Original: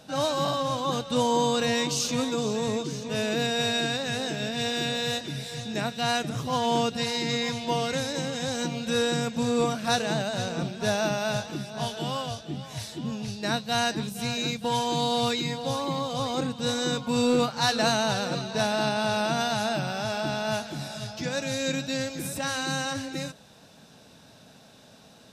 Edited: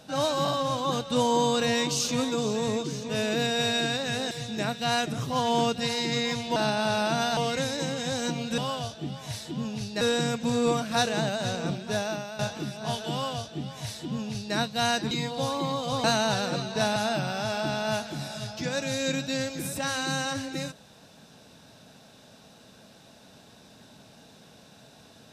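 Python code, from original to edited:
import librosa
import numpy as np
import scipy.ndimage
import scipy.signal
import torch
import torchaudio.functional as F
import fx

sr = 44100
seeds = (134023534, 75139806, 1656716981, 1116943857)

y = fx.edit(x, sr, fx.cut(start_s=4.31, length_s=1.17),
    fx.fade_out_to(start_s=10.66, length_s=0.66, floor_db=-13.5),
    fx.duplicate(start_s=12.05, length_s=1.43, to_s=8.94),
    fx.cut(start_s=14.04, length_s=1.34),
    fx.cut(start_s=16.31, length_s=1.52),
    fx.move(start_s=18.75, length_s=0.81, to_s=7.73), tone=tone)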